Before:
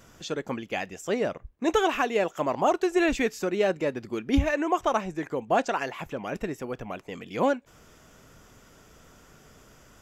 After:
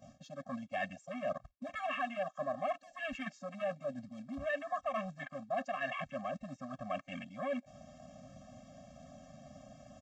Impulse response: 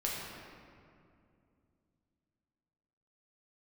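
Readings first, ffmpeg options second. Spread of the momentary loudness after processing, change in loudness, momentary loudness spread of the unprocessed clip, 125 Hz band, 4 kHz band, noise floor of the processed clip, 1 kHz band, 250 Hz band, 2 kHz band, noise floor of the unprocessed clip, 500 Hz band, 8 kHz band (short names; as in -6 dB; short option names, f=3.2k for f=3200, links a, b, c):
18 LU, -12.0 dB, 10 LU, -12.5 dB, -13.0 dB, -67 dBFS, -11.0 dB, -15.0 dB, -9.5 dB, -56 dBFS, -12.5 dB, under -15 dB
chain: -af "aresample=16000,acrusher=bits=3:mode=log:mix=0:aa=0.000001,aresample=44100,asoftclip=type=tanh:threshold=-24dB,areverse,acompressor=threshold=-42dB:ratio=10,areverse,afwtdn=0.00282,agate=range=-11dB:threshold=-59dB:ratio=16:detection=peak,highpass=f=460:p=1,afftfilt=real='re*eq(mod(floor(b*sr/1024/260),2),0)':imag='im*eq(mod(floor(b*sr/1024/260),2),0)':win_size=1024:overlap=0.75,volume=12dB"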